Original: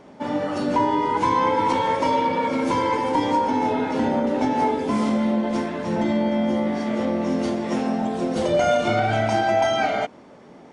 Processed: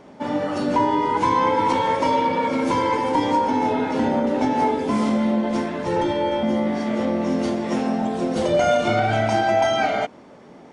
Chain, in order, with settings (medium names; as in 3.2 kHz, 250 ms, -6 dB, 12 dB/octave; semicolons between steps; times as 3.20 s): 5.86–6.43 s: comb 2.2 ms, depth 88%; trim +1 dB